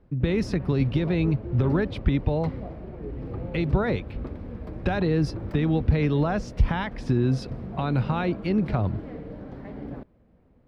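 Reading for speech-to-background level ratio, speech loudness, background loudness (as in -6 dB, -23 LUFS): 11.0 dB, -26.0 LUFS, -37.0 LUFS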